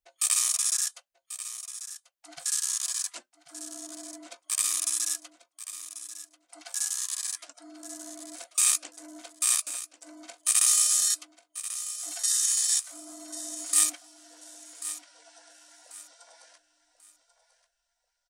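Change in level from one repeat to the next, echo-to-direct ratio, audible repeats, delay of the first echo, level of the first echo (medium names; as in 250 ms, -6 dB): -11.0 dB, -12.5 dB, 2, 1089 ms, -13.0 dB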